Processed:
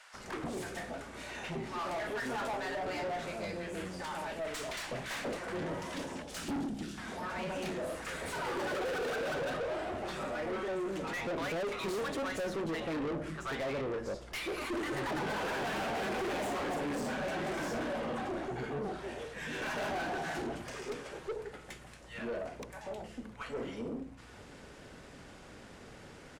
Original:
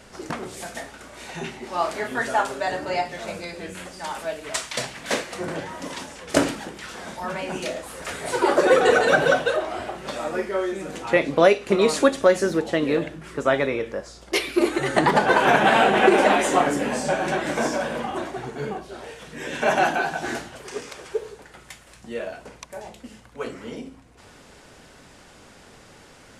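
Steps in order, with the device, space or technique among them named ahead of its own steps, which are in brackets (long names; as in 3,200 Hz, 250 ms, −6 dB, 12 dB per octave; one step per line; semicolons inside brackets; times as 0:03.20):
0:06.22–0:06.98: graphic EQ with 10 bands 250 Hz +9 dB, 500 Hz −10 dB, 1,000 Hz −12 dB, 2,000 Hz −8 dB
multiband delay without the direct sound highs, lows 140 ms, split 880 Hz
tube preamp driven hard (tube saturation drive 33 dB, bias 0.35; high-shelf EQ 3,000 Hz −8 dB)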